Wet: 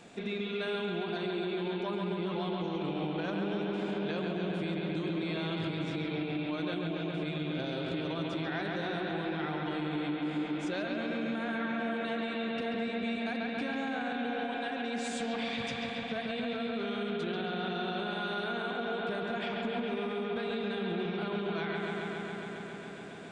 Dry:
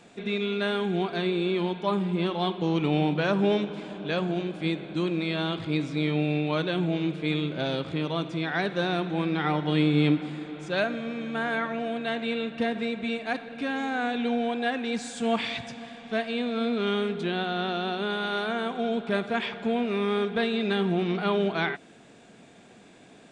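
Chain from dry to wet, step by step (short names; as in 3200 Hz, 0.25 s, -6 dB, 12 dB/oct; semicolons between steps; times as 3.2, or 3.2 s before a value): compressor, threshold -33 dBFS, peak gain reduction 14.5 dB; analogue delay 0.137 s, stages 4096, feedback 85%, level -4 dB; limiter -25.5 dBFS, peak gain reduction 6 dB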